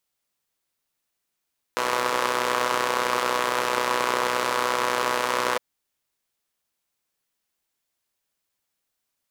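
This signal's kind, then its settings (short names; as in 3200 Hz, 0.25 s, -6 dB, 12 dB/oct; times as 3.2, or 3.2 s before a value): four-cylinder engine model, steady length 3.81 s, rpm 3700, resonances 530/1000 Hz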